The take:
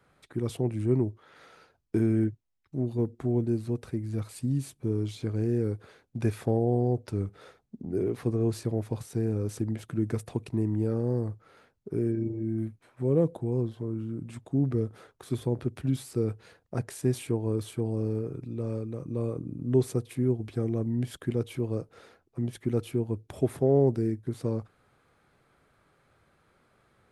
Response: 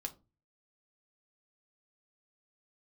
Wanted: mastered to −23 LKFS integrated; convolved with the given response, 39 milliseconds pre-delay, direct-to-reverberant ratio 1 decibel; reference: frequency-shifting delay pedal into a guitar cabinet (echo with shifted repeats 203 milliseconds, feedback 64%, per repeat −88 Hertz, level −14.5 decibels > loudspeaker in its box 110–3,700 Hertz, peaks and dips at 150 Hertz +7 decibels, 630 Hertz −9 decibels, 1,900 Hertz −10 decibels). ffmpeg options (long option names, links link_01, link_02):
-filter_complex "[0:a]asplit=2[link_01][link_02];[1:a]atrim=start_sample=2205,adelay=39[link_03];[link_02][link_03]afir=irnorm=-1:irlink=0,volume=0.5dB[link_04];[link_01][link_04]amix=inputs=2:normalize=0,asplit=8[link_05][link_06][link_07][link_08][link_09][link_10][link_11][link_12];[link_06]adelay=203,afreqshift=-88,volume=-14.5dB[link_13];[link_07]adelay=406,afreqshift=-176,volume=-18.4dB[link_14];[link_08]adelay=609,afreqshift=-264,volume=-22.3dB[link_15];[link_09]adelay=812,afreqshift=-352,volume=-26.1dB[link_16];[link_10]adelay=1015,afreqshift=-440,volume=-30dB[link_17];[link_11]adelay=1218,afreqshift=-528,volume=-33.9dB[link_18];[link_12]adelay=1421,afreqshift=-616,volume=-37.8dB[link_19];[link_05][link_13][link_14][link_15][link_16][link_17][link_18][link_19]amix=inputs=8:normalize=0,highpass=110,equalizer=frequency=150:width_type=q:width=4:gain=7,equalizer=frequency=630:width_type=q:width=4:gain=-9,equalizer=frequency=1900:width_type=q:width=4:gain=-10,lowpass=frequency=3700:width=0.5412,lowpass=frequency=3700:width=1.3066,volume=5dB"